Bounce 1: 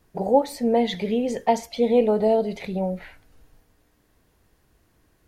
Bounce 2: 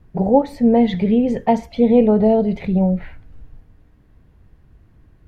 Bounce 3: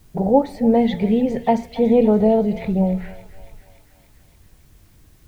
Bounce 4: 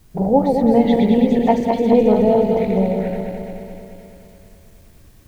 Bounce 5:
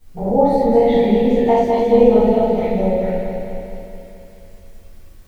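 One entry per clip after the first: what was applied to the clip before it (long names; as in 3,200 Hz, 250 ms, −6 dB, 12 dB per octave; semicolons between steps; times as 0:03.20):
bass and treble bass +13 dB, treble −14 dB; level +2.5 dB
bit-depth reduction 10 bits, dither triangular; mains-hum notches 60/120/180/240 Hz; feedback echo with a high-pass in the loop 284 ms, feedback 74%, high-pass 720 Hz, level −14.5 dB; level −1 dB
feedback delay that plays each chunk backwards 107 ms, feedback 78%, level −4 dB
convolution reverb, pre-delay 4 ms, DRR −12 dB; level −11 dB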